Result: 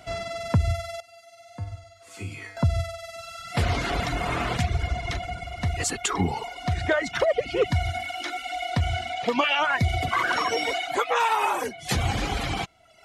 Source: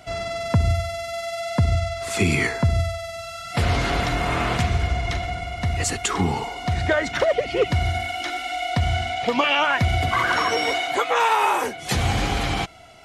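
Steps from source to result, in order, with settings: reverb removal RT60 0.8 s; 1.00–2.57 s: feedback comb 100 Hz, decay 0.63 s, harmonics odd, mix 90%; trim -2 dB

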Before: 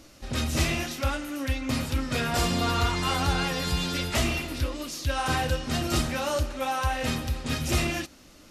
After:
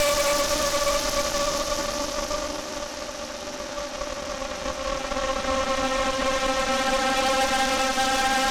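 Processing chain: Paulstretch 28×, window 0.25 s, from 6.38 s; cabinet simulation 370–6800 Hz, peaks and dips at 640 Hz +5 dB, 1.3 kHz -4 dB, 2.4 kHz -3 dB, 5.9 kHz +9 dB; Chebyshev shaper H 5 -17 dB, 8 -7 dB, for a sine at -15.5 dBFS

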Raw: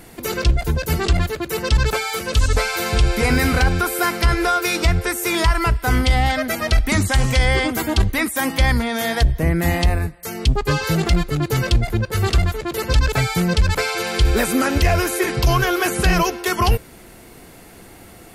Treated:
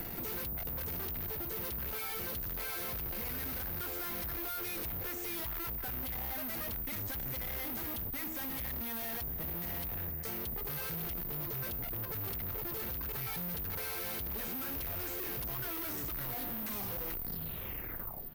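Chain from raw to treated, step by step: tape stop on the ending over 2.81 s; low-pass 7.1 kHz; bass shelf 150 Hz +4 dB; de-hum 79.62 Hz, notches 16; compression, threshold -17 dBFS, peak gain reduction 10.5 dB; valve stage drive 40 dB, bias 0.5; on a send: feedback delay 902 ms, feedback 44%, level -19.5 dB; on the sum: careless resampling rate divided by 3×, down filtered, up zero stuff; three bands compressed up and down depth 70%; trim -2.5 dB

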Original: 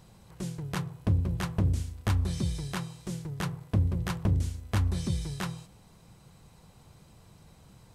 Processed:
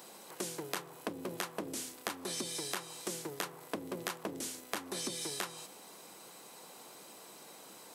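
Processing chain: high-pass 290 Hz 24 dB/octave; treble shelf 9.3 kHz +10.5 dB; compression 12:1, threshold -42 dBFS, peak gain reduction 13 dB; trim +7.5 dB

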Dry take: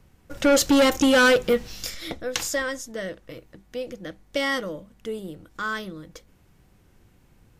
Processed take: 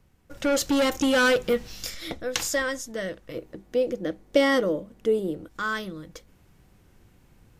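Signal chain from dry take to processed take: 3.34–5.48 s: peaking EQ 390 Hz +10.5 dB 1.8 oct; gain riding within 3 dB 2 s; trim -2.5 dB

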